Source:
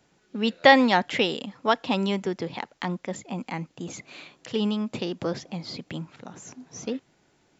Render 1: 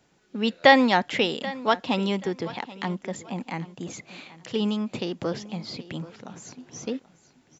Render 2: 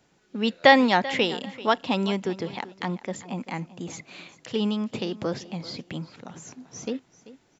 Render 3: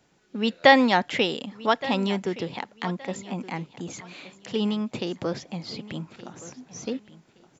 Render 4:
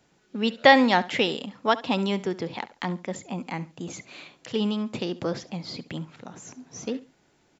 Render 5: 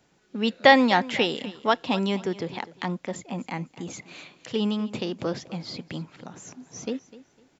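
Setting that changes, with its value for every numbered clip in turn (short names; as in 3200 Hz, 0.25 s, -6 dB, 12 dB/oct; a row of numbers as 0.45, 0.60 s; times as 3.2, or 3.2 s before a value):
feedback echo, time: 782, 388, 1170, 69, 252 ms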